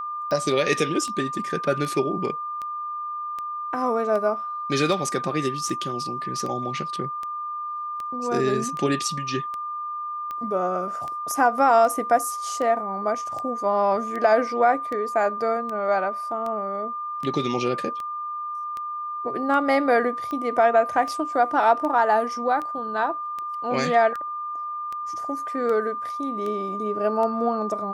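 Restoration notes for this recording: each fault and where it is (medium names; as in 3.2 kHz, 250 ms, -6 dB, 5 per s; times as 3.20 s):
tick 78 rpm -20 dBFS
whine 1.2 kHz -28 dBFS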